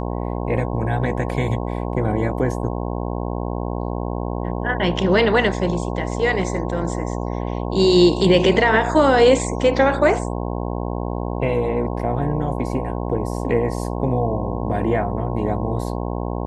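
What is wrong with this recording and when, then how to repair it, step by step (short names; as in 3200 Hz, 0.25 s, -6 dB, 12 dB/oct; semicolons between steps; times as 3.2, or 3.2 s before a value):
buzz 60 Hz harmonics 18 -25 dBFS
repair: de-hum 60 Hz, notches 18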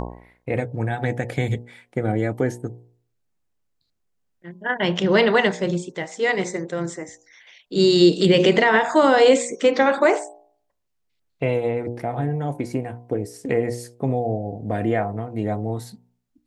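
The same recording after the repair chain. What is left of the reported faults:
none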